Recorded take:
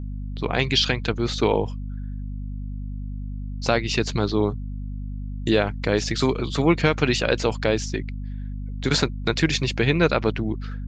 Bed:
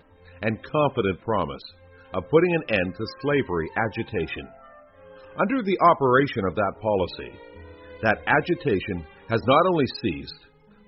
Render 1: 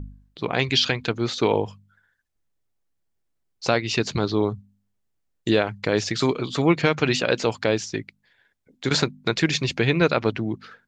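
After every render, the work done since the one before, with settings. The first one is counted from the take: de-hum 50 Hz, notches 5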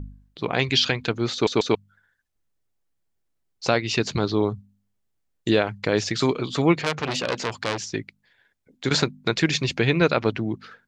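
1.33 stutter in place 0.14 s, 3 plays; 6.79–7.85 core saturation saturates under 3100 Hz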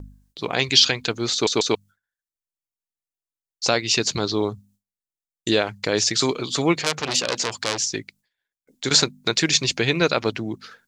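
gate with hold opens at -49 dBFS; tone controls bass -4 dB, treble +13 dB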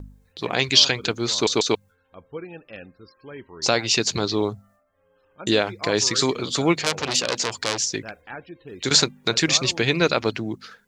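add bed -17 dB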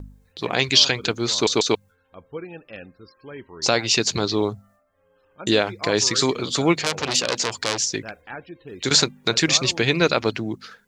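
gain +1 dB; limiter -3 dBFS, peak gain reduction 3 dB

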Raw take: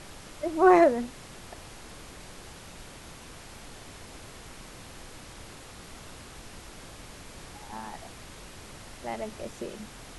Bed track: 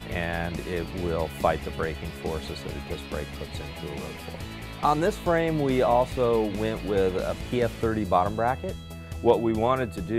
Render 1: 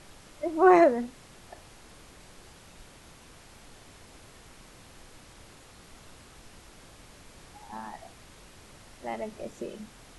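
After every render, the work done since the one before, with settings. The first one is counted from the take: noise print and reduce 6 dB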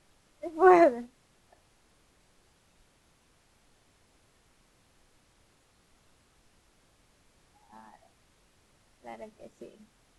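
upward expander 1.5:1, over -43 dBFS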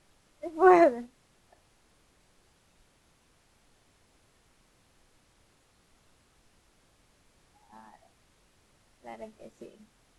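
9.18–9.66 doubler 18 ms -7 dB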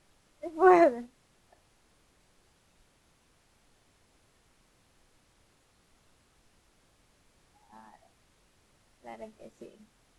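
gain -1 dB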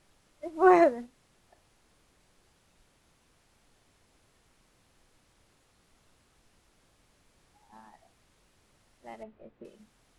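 9.23–9.65 air absorption 470 m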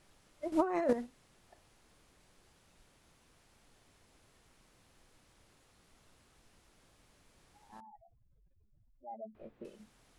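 0.52–0.93 negative-ratio compressor -31 dBFS; 7.8–9.35 spectral contrast raised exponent 3.8

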